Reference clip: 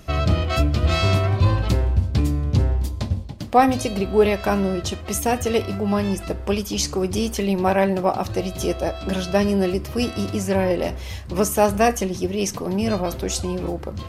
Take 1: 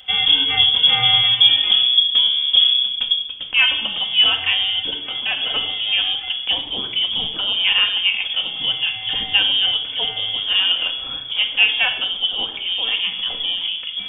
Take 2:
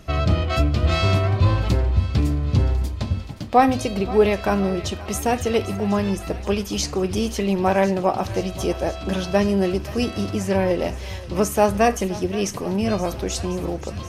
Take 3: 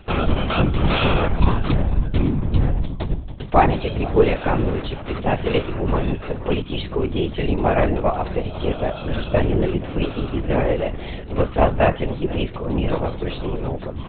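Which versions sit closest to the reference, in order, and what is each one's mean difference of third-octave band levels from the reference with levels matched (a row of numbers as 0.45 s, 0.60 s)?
2, 3, 1; 1.5 dB, 9.0 dB, 16.5 dB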